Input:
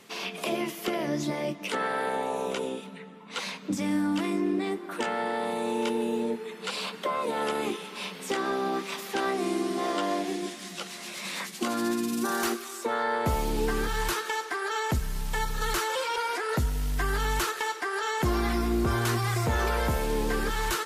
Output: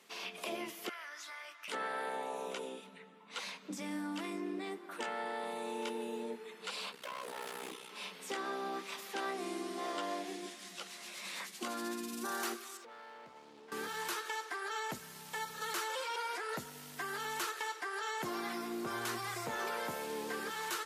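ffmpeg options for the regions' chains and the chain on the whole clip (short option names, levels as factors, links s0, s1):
-filter_complex "[0:a]asettb=1/sr,asplit=3[s0][s1][s2];[s0]atrim=end=0.894[s3];[s1]atrim=start=0.89:end=1.68,asetpts=PTS-STARTPTS,afade=t=in:d=0.004:c=qsin,afade=t=out:st=0.786:d=0.004:c=qsin,highpass=f=1400:t=q:w=4.2,acompressor=threshold=0.0158:ratio=3:attack=3.2:release=140:knee=1:detection=peak[s4];[s2]atrim=start=1.676[s5];[s3][s4]acrossfade=d=0.004:c1=hsin:c2=qsin[s6];[s6][s5]acrossfade=d=0.004:c1=qsin:c2=hsin,asettb=1/sr,asplit=3[s7][s8][s9];[s7]atrim=end=6.924[s10];[s8]atrim=start=6.92:end=7.9,asetpts=PTS-STARTPTS,afade=t=in:d=0.004:c=qsin,afade=t=out:st=0.976:d=0.004:c=qsin,highshelf=f=6300:g=7.5,aeval=exprs='0.0473*(abs(mod(val(0)/0.0473+3,4)-2)-1)':c=same,aeval=exprs='val(0)*sin(2*PI*31*n/s)':c=same[s11];[s9]atrim=start=7.896[s12];[s10][s11]acrossfade=d=0.004:c1=hsin:c2=qsin[s13];[s13][s12]acrossfade=d=0.004:c1=qsin:c2=hsin,asettb=1/sr,asplit=3[s14][s15][s16];[s14]atrim=end=12.774[s17];[s15]atrim=start=12.77:end=13.72,asetpts=PTS-STARTPTS,afade=t=in:d=0.004:c=qsin,afade=t=out:st=0.946:d=0.004:c=qsin,lowpass=4900,acompressor=threshold=0.0158:ratio=16:attack=3.2:release=140:knee=1:detection=peak,asoftclip=type=hard:threshold=0.01[s18];[s16]atrim=start=13.716[s19];[s17][s18]acrossfade=d=0.004:c1=hsin:c2=qsin[s20];[s20][s19]acrossfade=d=0.004:c1=qsin:c2=hsin,highpass=f=140:w=0.5412,highpass=f=140:w=1.3066,lowshelf=f=280:g=-10.5,volume=0.398"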